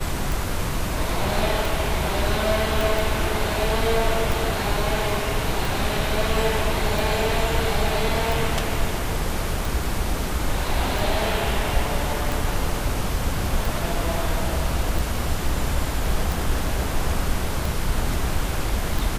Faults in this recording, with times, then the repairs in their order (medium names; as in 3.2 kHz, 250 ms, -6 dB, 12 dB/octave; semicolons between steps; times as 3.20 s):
tick 45 rpm
2.81 s: pop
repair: de-click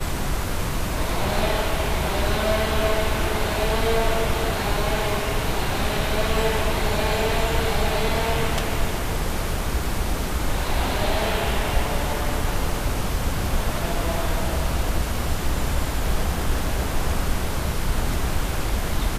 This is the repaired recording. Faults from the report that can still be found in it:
nothing left